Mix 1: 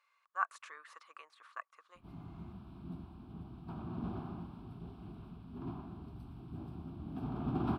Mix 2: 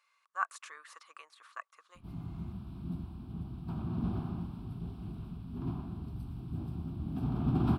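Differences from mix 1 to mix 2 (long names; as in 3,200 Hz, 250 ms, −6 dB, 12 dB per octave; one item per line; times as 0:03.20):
background: add bass and treble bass +9 dB, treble 0 dB
master: add high-shelf EQ 4,300 Hz +11 dB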